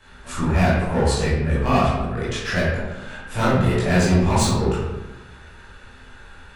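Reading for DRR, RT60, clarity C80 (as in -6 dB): -11.0 dB, 1.1 s, 2.5 dB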